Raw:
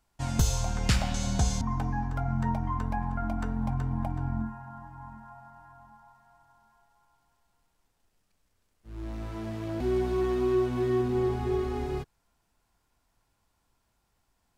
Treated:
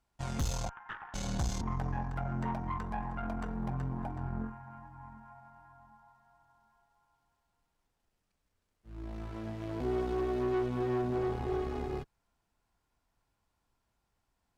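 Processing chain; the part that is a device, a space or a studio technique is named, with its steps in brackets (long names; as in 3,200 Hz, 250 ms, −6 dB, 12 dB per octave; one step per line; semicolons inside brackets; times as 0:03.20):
0:00.69–0:01.14: elliptic band-pass filter 860–1,800 Hz, stop band 40 dB
tube preamp driven hard (tube saturation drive 27 dB, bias 0.8; high-shelf EQ 5,400 Hz −5.5 dB)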